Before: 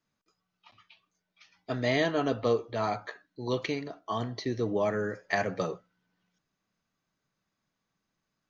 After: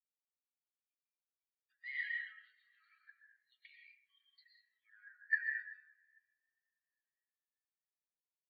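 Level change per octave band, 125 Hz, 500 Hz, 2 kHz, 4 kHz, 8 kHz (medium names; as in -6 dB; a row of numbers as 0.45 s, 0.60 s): under -40 dB, under -40 dB, -3.5 dB, -21.5 dB, no reading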